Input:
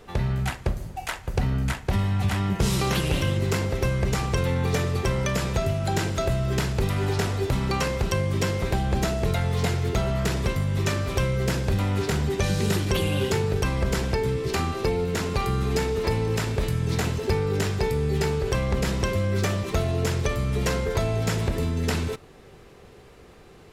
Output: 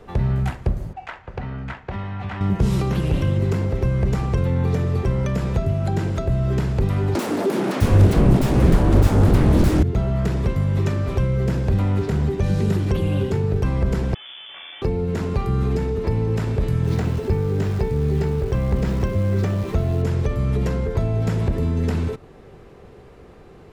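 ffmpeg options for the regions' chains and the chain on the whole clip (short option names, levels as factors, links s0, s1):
-filter_complex "[0:a]asettb=1/sr,asplit=3[s0][s1][s2];[s0]atrim=end=0.934[s3];[s1]atrim=start=0.93:end=2.41,asetpts=PTS-STARTPTS,afade=t=in:d=0.004:c=qsin,afade=t=out:st=1.476:d=0.004:c=qsin,bandpass=f=2000:t=q:w=0.58,aemphasis=mode=reproduction:type=bsi[s4];[s2]atrim=start=2.406[s5];[s3][s4]acrossfade=d=0.004:c1=hsin:c2=qsin[s6];[s6][s5]acrossfade=d=0.004:c1=qsin:c2=hsin,asettb=1/sr,asplit=3[s7][s8][s9];[s7]atrim=end=7.154[s10];[s8]atrim=start=7.15:end=9.83,asetpts=PTS-STARTPTS,afade=t=in:d=0.004:c=qsin,afade=t=out:st=2.676:d=0.004:c=qsin,equalizer=f=11000:t=o:w=1.3:g=8.5,aeval=exprs='0.299*sin(PI/2*7.08*val(0)/0.299)':c=same,acrossover=split=240[s11][s12];[s11]adelay=660[s13];[s13][s12]amix=inputs=2:normalize=0,atrim=end_sample=118188[s14];[s9]atrim=start=9.826[s15];[s10][s14]acrossfade=d=0.004:c1=hsin:c2=qsin[s16];[s16][s15]acrossfade=d=0.004:c1=qsin:c2=hsin,asettb=1/sr,asplit=3[s17][s18][s19];[s17]atrim=end=14.144[s20];[s18]atrim=start=14.14:end=14.82,asetpts=PTS-STARTPTS,afade=t=in:d=0.004:c=qsin,afade=t=out:st=0.676:d=0.004:c=qsin,aeval=exprs='(tanh(63.1*val(0)+0.75)-tanh(0.75))/63.1':c=same,lowpass=f=3000:t=q:w=0.5098,lowpass=f=3000:t=q:w=0.6013,lowpass=f=3000:t=q:w=0.9,lowpass=f=3000:t=q:w=2.563,afreqshift=-3500,lowshelf=f=270:g=-9[s21];[s19]atrim=start=14.816[s22];[s20][s21]acrossfade=d=0.004:c1=hsin:c2=qsin[s23];[s23][s22]acrossfade=d=0.004:c1=qsin:c2=hsin,asettb=1/sr,asplit=3[s24][s25][s26];[s24]atrim=end=16.844[s27];[s25]atrim=start=16.84:end=20.02,asetpts=PTS-STARTPTS,afade=t=in:d=0.004:c=qsin,afade=t=out:st=3.176:d=0.004:c=qsin,lowpass=8200,acrusher=bits=7:dc=4:mix=0:aa=0.000001[s28];[s26]atrim=start=20.016[s29];[s27][s28]acrossfade=d=0.004:c1=hsin:c2=qsin[s30];[s30][s29]acrossfade=d=0.004:c1=qsin:c2=hsin,highshelf=f=2100:g=-11.5,acrossover=split=330[s31][s32];[s32]acompressor=threshold=0.02:ratio=6[s33];[s31][s33]amix=inputs=2:normalize=0,volume=1.78"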